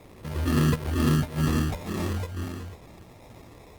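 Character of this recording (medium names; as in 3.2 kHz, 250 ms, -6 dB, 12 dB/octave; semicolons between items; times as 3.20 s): a quantiser's noise floor 8-bit, dither triangular; phasing stages 12, 2.1 Hz, lowest notch 260–1700 Hz; aliases and images of a low sample rate 1.5 kHz, jitter 0%; Opus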